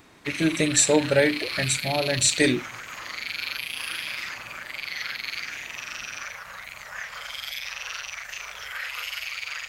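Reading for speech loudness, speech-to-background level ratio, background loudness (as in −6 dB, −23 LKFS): −22.5 LKFS, 9.0 dB, −31.5 LKFS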